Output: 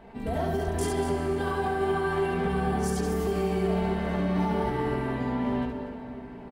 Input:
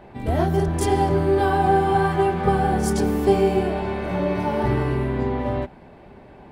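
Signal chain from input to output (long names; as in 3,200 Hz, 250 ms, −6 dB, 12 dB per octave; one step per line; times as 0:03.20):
comb filter 4.4 ms, depth 62%
brickwall limiter −15.5 dBFS, peak gain reduction 10 dB
loudspeakers that aren't time-aligned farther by 24 metres −4 dB, 82 metres −11 dB
on a send at −8.5 dB: convolution reverb RT60 4.7 s, pre-delay 118 ms
on the sum: level −5.5 dB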